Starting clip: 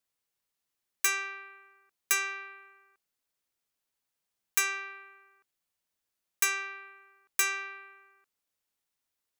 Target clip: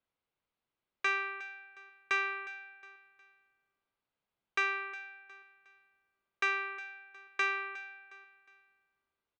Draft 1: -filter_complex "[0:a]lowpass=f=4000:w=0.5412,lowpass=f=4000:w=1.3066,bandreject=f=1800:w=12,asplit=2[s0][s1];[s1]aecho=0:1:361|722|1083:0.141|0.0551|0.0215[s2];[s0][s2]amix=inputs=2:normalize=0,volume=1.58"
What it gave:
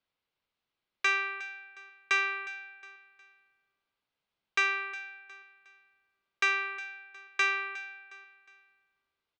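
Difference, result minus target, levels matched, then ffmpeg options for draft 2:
4 kHz band +2.5 dB
-filter_complex "[0:a]lowpass=f=4000:w=0.5412,lowpass=f=4000:w=1.3066,highshelf=f=2300:g=-9.5,bandreject=f=1800:w=12,asplit=2[s0][s1];[s1]aecho=0:1:361|722|1083:0.141|0.0551|0.0215[s2];[s0][s2]amix=inputs=2:normalize=0,volume=1.58"

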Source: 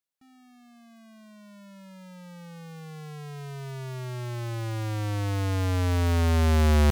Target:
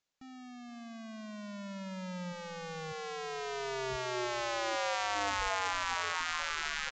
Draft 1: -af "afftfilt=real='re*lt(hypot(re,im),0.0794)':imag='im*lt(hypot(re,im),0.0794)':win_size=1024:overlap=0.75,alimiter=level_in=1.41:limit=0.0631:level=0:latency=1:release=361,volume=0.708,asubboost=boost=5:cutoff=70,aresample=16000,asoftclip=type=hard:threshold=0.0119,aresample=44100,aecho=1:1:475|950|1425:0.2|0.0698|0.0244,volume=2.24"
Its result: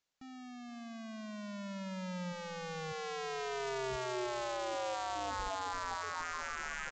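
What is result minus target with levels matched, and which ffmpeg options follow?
hard clipper: distortion +12 dB
-af "afftfilt=real='re*lt(hypot(re,im),0.0794)':imag='im*lt(hypot(re,im),0.0794)':win_size=1024:overlap=0.75,alimiter=level_in=1.41:limit=0.0631:level=0:latency=1:release=361,volume=0.708,asubboost=boost=5:cutoff=70,aresample=16000,asoftclip=type=hard:threshold=0.0316,aresample=44100,aecho=1:1:475|950|1425:0.2|0.0698|0.0244,volume=2.24"

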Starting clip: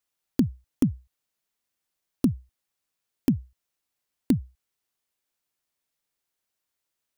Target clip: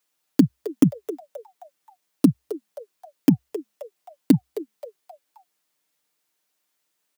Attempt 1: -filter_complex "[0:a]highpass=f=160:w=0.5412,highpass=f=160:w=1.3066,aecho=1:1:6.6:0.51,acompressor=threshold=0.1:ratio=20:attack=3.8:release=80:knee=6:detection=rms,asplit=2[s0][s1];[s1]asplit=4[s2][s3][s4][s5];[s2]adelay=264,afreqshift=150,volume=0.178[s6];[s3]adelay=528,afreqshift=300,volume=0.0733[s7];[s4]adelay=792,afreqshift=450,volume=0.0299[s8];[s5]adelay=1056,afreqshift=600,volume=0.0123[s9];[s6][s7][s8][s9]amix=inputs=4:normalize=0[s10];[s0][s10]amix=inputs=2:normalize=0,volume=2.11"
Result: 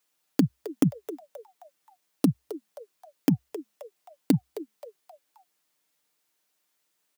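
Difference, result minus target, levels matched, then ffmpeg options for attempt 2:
compression: peak gain reduction +8 dB
-filter_complex "[0:a]highpass=f=160:w=0.5412,highpass=f=160:w=1.3066,aecho=1:1:6.6:0.51,asplit=2[s0][s1];[s1]asplit=4[s2][s3][s4][s5];[s2]adelay=264,afreqshift=150,volume=0.178[s6];[s3]adelay=528,afreqshift=300,volume=0.0733[s7];[s4]adelay=792,afreqshift=450,volume=0.0299[s8];[s5]adelay=1056,afreqshift=600,volume=0.0123[s9];[s6][s7][s8][s9]amix=inputs=4:normalize=0[s10];[s0][s10]amix=inputs=2:normalize=0,volume=2.11"

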